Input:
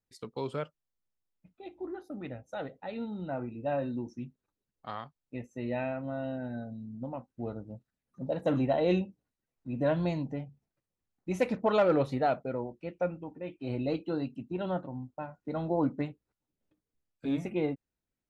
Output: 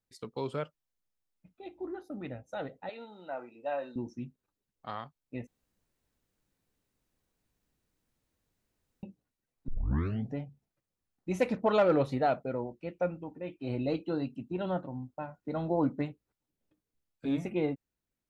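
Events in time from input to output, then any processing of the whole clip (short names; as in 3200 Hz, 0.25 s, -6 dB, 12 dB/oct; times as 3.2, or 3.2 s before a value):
2.89–3.96 HPF 550 Hz
5.47–9.03 room tone
9.68 tape start 0.67 s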